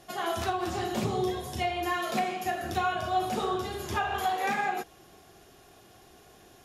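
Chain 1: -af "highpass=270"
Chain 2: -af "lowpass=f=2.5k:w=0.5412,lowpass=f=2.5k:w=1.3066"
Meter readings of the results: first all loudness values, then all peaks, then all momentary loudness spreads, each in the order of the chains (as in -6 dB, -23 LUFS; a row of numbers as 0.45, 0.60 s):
-31.0, -30.5 LUFS; -15.5, -15.0 dBFS; 4, 4 LU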